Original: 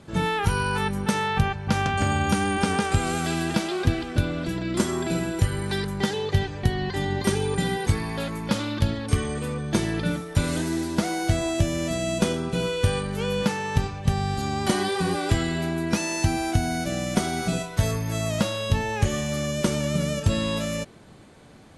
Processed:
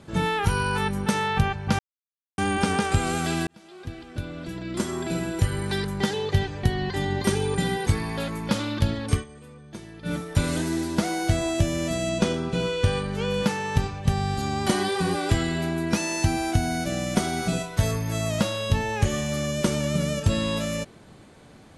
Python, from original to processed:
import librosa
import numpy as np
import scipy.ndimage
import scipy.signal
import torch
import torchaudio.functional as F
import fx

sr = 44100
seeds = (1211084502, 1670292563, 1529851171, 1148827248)

y = fx.lowpass(x, sr, hz=7300.0, slope=12, at=(12.09, 13.34))
y = fx.edit(y, sr, fx.silence(start_s=1.79, length_s=0.59),
    fx.fade_in_span(start_s=3.47, length_s=2.1),
    fx.fade_down_up(start_s=9.13, length_s=1.01, db=-16.5, fade_s=0.12), tone=tone)